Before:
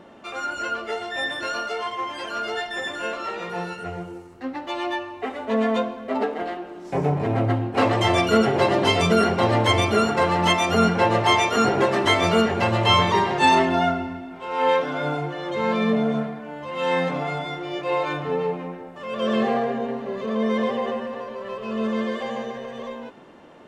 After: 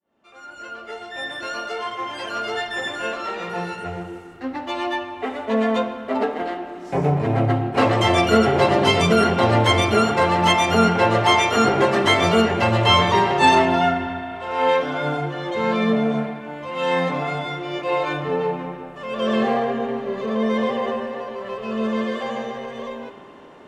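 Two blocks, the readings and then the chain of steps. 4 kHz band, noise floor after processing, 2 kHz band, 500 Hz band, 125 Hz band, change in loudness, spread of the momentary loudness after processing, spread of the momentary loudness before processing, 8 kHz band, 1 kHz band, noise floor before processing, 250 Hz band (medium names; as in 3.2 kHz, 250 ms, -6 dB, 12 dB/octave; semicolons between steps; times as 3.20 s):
+2.0 dB, -41 dBFS, +2.0 dB, +2.0 dB, +2.5 dB, +2.0 dB, 15 LU, 14 LU, +2.0 dB, +2.5 dB, -40 dBFS, +2.0 dB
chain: fade-in on the opening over 2.28 s; spring tank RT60 3.2 s, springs 35 ms, chirp 75 ms, DRR 10 dB; trim +2 dB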